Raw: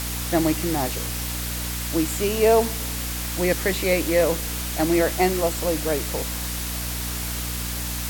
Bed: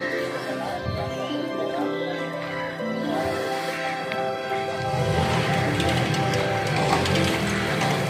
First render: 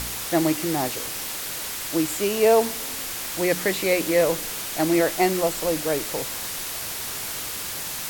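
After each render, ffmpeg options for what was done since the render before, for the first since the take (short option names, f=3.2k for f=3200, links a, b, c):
-af "bandreject=f=60:t=h:w=4,bandreject=f=120:t=h:w=4,bandreject=f=180:t=h:w=4,bandreject=f=240:t=h:w=4,bandreject=f=300:t=h:w=4"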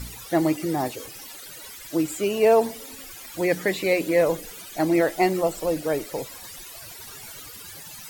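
-af "afftdn=nr=16:nf=-32"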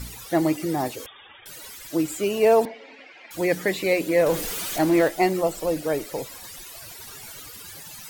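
-filter_complex "[0:a]asettb=1/sr,asplit=3[a][b][c];[a]atrim=end=1.064[d];[b]atrim=start=1.06:end=1.46,asetpts=PTS-STARTPTS,afade=t=in:d=0.004:c=qsin,afade=t=out:st=0.396:d=0.004:c=qsin,lowpass=f=3.1k:t=q:w=0.5098,lowpass=f=3.1k:t=q:w=0.6013,lowpass=f=3.1k:t=q:w=0.9,lowpass=f=3.1k:t=q:w=2.563,afreqshift=-3700[e];[c]atrim=start=1.456[f];[d][e]acrossfade=d=0.004:c1=hsin:c2=qsin[g];[g][f]acrossfade=d=0.004:c1=qsin:c2=hsin,asettb=1/sr,asplit=3[h][i][j];[h]atrim=end=2.654[k];[i]atrim=start=2.65:end=3.31,asetpts=PTS-STARTPTS,afade=t=in:d=0.004:c=qsin,afade=t=out:st=0.656:d=0.004:c=qsin,highpass=f=240:w=0.5412,highpass=f=240:w=1.3066,equalizer=f=250:t=q:w=4:g=-5,equalizer=f=370:t=q:w=4:g=-4,equalizer=f=640:t=q:w=4:g=4,equalizer=f=1.2k:t=q:w=4:g=-7,equalizer=f=2.2k:t=q:w=4:g=6,equalizer=f=3.5k:t=q:w=4:g=-6,lowpass=f=3.5k:w=0.5412,lowpass=f=3.5k:w=1.3066[l];[j]atrim=start=3.306[m];[k][l]acrossfade=d=0.004:c1=hsin:c2=qsin[n];[n][m]acrossfade=d=0.004:c1=qsin:c2=hsin,asettb=1/sr,asplit=3[o][p][q];[o]atrim=end=4.264[r];[p]atrim=start=4.26:end=5.08,asetpts=PTS-STARTPTS,afade=t=in:d=0.004:c=qsin,afade=t=out:st=0.816:d=0.004:c=qsin,aeval=exprs='val(0)+0.5*0.0447*sgn(val(0))':c=same[s];[q]atrim=start=5.076[t];[r][s]acrossfade=d=0.004:c1=hsin:c2=qsin[u];[u][t]acrossfade=d=0.004:c1=qsin:c2=hsin"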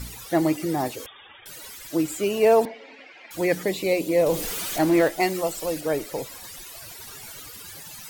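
-filter_complex "[0:a]asettb=1/sr,asplit=3[a][b][c];[a]atrim=end=3.634[d];[b]atrim=start=3.63:end=4.41,asetpts=PTS-STARTPTS,afade=t=in:d=0.004:c=qsin,afade=t=out:st=0.776:d=0.004:c=qsin,equalizer=f=1.6k:w=2:g=-12[e];[c]atrim=start=4.406[f];[d][e]acrossfade=d=0.004:c1=hsin:c2=qsin[g];[g][f]acrossfade=d=0.004:c1=qsin:c2=hsin,asettb=1/sr,asplit=3[h][i][j];[h]atrim=end=5.204[k];[i]atrim=start=5.2:end=5.81,asetpts=PTS-STARTPTS,afade=t=in:d=0.004:c=qsin,afade=t=out:st=0.606:d=0.004:c=qsin,tiltshelf=f=1.5k:g=-4[l];[j]atrim=start=5.806[m];[k][l]acrossfade=d=0.004:c1=hsin:c2=qsin[n];[n][m]acrossfade=d=0.004:c1=qsin:c2=hsin"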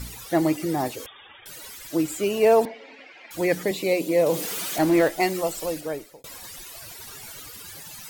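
-filter_complex "[0:a]asettb=1/sr,asplit=3[a][b][c];[a]atrim=end=3.714[d];[b]atrim=start=3.71:end=4.78,asetpts=PTS-STARTPTS,afade=t=in:d=0.004:c=qsin,afade=t=out:st=1.066:d=0.004:c=qsin,highpass=f=130:w=0.5412,highpass=f=130:w=1.3066[e];[c]atrim=start=4.776[f];[d][e]acrossfade=d=0.004:c1=hsin:c2=qsin[g];[g][f]acrossfade=d=0.004:c1=qsin:c2=hsin,asplit=2[h][i];[h]atrim=end=6.24,asetpts=PTS-STARTPTS,afade=t=out:st=5.63:d=0.61[j];[i]atrim=start=6.24,asetpts=PTS-STARTPTS,afade=t=in:d=0.004:c=hsin[k];[j][k]concat=n=2:v=0:a=1"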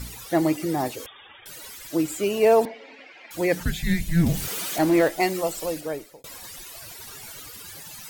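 -filter_complex "[0:a]asettb=1/sr,asplit=3[a][b][c];[a]atrim=end=3.604[d];[b]atrim=start=3.6:end=4.48,asetpts=PTS-STARTPTS,afade=t=in:d=0.004:c=qsin,afade=t=out:st=0.876:d=0.004:c=qsin,afreqshift=-350[e];[c]atrim=start=4.476[f];[d][e]acrossfade=d=0.004:c1=hsin:c2=qsin[g];[g][f]acrossfade=d=0.004:c1=qsin:c2=hsin"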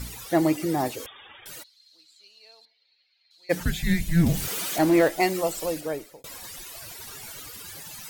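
-filter_complex "[0:a]asplit=3[a][b][c];[a]afade=t=out:st=1.62:d=0.02[d];[b]bandpass=f=4.2k:t=q:w=17,afade=t=in:st=1.62:d=0.02,afade=t=out:st=3.49:d=0.02[e];[c]afade=t=in:st=3.49:d=0.02[f];[d][e][f]amix=inputs=3:normalize=0"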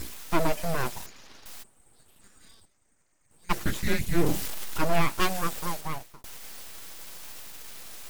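-af "aeval=exprs='abs(val(0))':c=same"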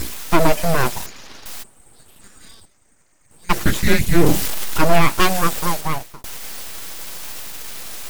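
-af "volume=11dB,alimiter=limit=-1dB:level=0:latency=1"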